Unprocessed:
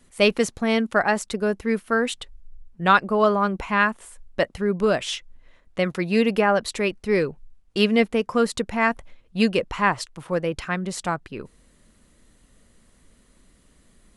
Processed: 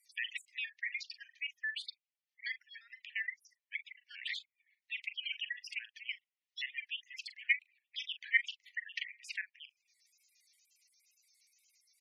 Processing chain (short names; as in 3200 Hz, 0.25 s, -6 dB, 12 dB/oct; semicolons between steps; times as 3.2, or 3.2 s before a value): trilling pitch shifter -11.5 st, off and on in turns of 69 ms; vocal rider within 4 dB 2 s; Chebyshev high-pass 1600 Hz, order 6; doubler 49 ms -13.5 dB; level quantiser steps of 12 dB; high shelf 4200 Hz +10 dB; spectral gate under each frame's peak -10 dB strong; wide varispeed 1.18×; wow and flutter 120 cents; treble ducked by the level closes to 2900 Hz, closed at -51 dBFS; high shelf 8400 Hz -10 dB; gain +1 dB